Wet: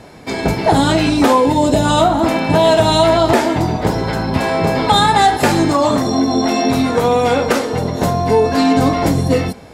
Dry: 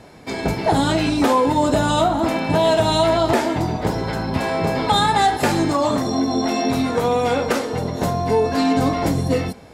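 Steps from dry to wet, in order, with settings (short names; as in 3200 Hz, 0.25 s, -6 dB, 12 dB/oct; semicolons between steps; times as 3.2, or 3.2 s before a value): 1.36–1.84 bell 1300 Hz -4 dB -> -12 dB 0.77 oct; gain +5 dB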